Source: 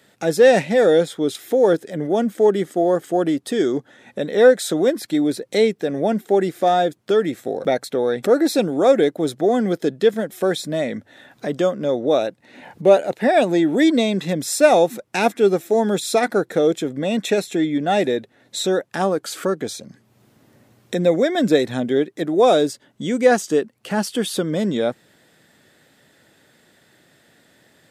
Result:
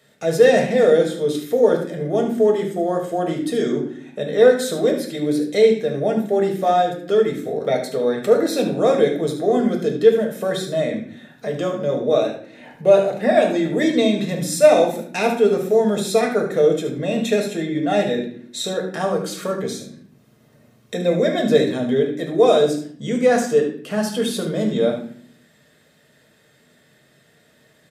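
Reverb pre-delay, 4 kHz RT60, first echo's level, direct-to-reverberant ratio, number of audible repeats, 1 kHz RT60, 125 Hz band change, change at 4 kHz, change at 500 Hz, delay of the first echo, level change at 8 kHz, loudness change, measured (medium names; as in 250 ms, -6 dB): 4 ms, 0.45 s, -10.5 dB, 1.0 dB, 1, 0.50 s, +1.5 dB, -1.0 dB, +0.5 dB, 74 ms, -1.5 dB, 0.0 dB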